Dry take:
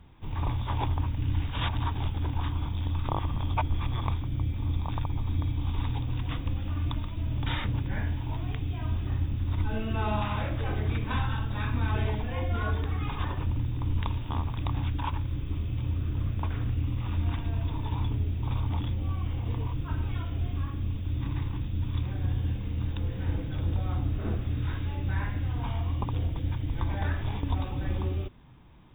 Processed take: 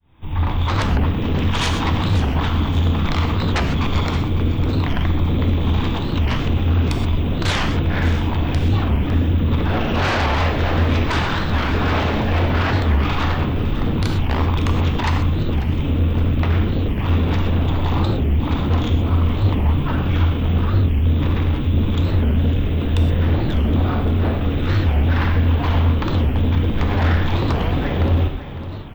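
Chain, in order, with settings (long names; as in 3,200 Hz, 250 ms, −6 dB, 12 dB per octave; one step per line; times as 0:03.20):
fade in at the beginning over 0.79 s
mains-hum notches 60/120 Hz
in parallel at −3 dB: brickwall limiter −24 dBFS, peak gain reduction 10 dB
on the sum: tuned comb filter 640 Hz, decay 0.35 s, mix 60%
sine wavefolder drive 16 dB, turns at −17 dBFS
on a send: repeating echo 555 ms, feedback 40%, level −13 dB
on the sum: reverb whose tail is shaped and stops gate 150 ms flat, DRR 4.5 dB
wow of a warped record 45 rpm, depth 250 cents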